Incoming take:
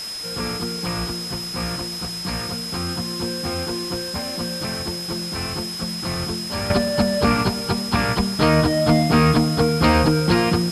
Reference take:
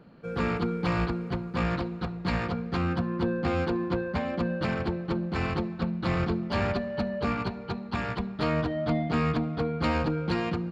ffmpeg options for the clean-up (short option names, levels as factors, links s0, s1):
-af "bandreject=f=5100:w=30,afwtdn=0.018,asetnsamples=n=441:p=0,asendcmd='6.7 volume volume -10.5dB',volume=1"